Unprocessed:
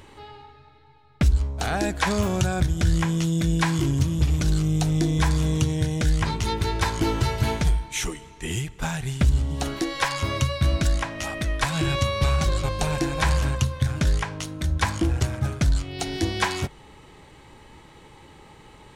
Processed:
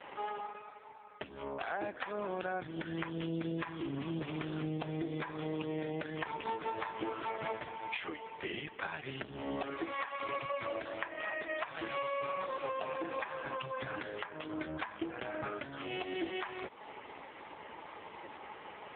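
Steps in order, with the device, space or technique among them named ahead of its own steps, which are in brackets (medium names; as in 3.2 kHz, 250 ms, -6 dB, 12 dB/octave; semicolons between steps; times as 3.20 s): voicemail (band-pass 430–2900 Hz; compression 12:1, threshold -40 dBFS, peak gain reduction 21.5 dB; trim +8 dB; AMR-NB 4.75 kbps 8 kHz)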